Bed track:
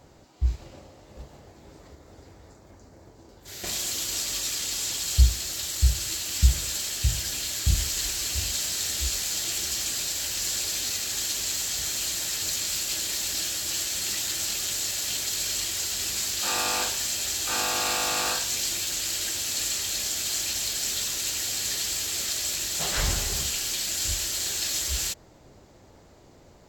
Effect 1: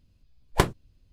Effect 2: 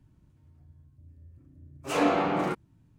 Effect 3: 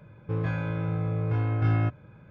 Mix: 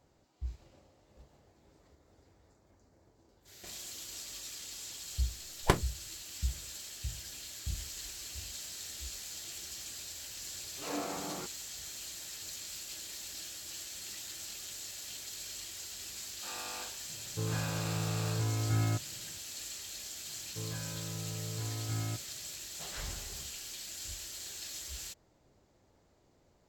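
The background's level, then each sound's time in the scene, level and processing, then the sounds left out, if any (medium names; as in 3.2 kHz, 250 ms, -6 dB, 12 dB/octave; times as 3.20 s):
bed track -15 dB
5.10 s: add 1 -5 dB
8.92 s: add 2 -14 dB
17.08 s: add 3 -6.5 dB
20.27 s: add 3 -12.5 dB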